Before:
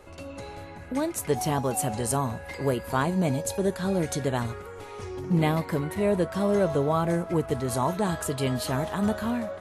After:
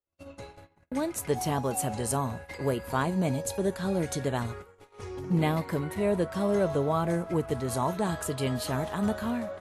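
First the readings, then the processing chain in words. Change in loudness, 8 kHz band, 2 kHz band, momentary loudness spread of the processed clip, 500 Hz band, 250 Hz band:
-2.5 dB, -2.5 dB, -2.5 dB, 11 LU, -2.5 dB, -2.5 dB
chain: gate -38 dBFS, range -45 dB; trim -2.5 dB

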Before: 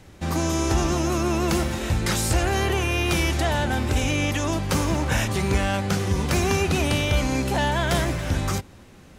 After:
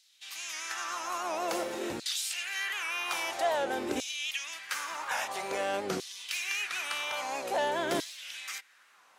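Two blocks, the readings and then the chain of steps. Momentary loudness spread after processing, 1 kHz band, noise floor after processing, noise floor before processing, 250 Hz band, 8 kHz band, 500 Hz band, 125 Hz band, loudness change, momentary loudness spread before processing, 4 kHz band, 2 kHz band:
7 LU, -6.5 dB, -62 dBFS, -47 dBFS, -17.0 dB, -7.5 dB, -8.5 dB, -31.5 dB, -10.0 dB, 3 LU, -6.0 dB, -6.5 dB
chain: LFO high-pass saw down 0.5 Hz 300–4300 Hz; warped record 78 rpm, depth 100 cents; trim -8.5 dB

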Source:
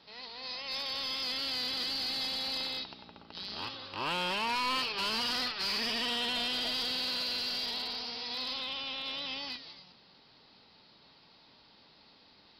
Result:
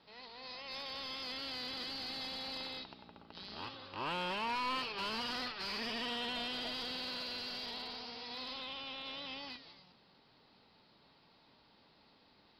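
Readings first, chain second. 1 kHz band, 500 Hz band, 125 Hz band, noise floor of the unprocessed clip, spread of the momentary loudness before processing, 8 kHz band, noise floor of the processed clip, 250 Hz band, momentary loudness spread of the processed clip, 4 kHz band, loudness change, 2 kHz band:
-3.5 dB, -3.0 dB, -3.0 dB, -61 dBFS, 10 LU, -11.0 dB, -67 dBFS, -3.0 dB, 11 LU, -8.5 dB, -7.0 dB, -5.5 dB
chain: treble shelf 3.8 kHz -10.5 dB; trim -3 dB

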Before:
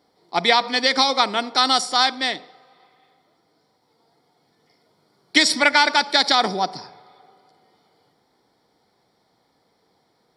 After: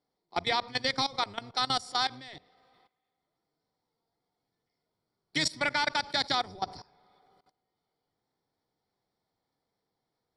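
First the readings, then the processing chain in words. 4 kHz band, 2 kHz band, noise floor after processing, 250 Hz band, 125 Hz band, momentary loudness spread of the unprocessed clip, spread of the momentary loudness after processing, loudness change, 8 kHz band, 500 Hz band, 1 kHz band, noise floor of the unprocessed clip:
-12.0 dB, -12.5 dB, -84 dBFS, -13.0 dB, -2.5 dB, 10 LU, 10 LU, -12.0 dB, -12.5 dB, -12.5 dB, -12.0 dB, -66 dBFS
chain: octave divider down 1 oct, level -2 dB; level held to a coarse grid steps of 19 dB; trim -8 dB

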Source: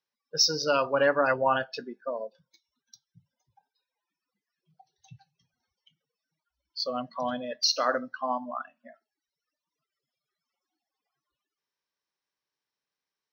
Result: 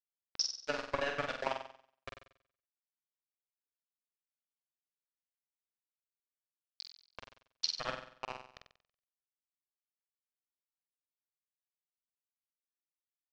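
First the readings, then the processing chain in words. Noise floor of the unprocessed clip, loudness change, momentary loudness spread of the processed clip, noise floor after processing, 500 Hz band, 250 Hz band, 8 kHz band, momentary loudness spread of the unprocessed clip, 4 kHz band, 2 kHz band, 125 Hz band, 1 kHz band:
under -85 dBFS, -10.5 dB, 19 LU, under -85 dBFS, -14.5 dB, -15.5 dB, -11.5 dB, 14 LU, -10.5 dB, -10.5 dB, -10.0 dB, -13.5 dB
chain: transient shaper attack +7 dB, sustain -9 dB; small samples zeroed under -17.5 dBFS; power-law waveshaper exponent 2; compression 3:1, threshold -28 dBFS, peak gain reduction 10.5 dB; low-pass 5.9 kHz 24 dB/octave; flutter echo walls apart 8 m, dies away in 0.56 s; trim -2.5 dB

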